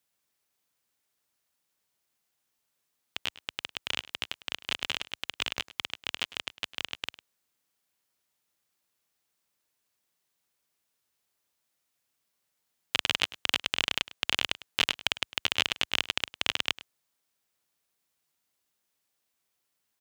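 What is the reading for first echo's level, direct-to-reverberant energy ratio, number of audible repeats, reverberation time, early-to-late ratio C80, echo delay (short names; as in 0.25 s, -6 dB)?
-18.0 dB, none, 1, none, none, 0.103 s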